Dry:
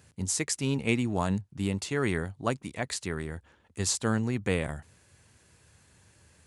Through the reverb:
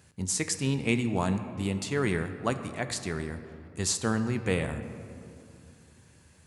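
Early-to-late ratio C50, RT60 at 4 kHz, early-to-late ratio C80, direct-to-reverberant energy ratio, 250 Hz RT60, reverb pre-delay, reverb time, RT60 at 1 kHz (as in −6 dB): 10.0 dB, 1.4 s, 11.0 dB, 8.5 dB, 3.4 s, 5 ms, 2.7 s, 2.7 s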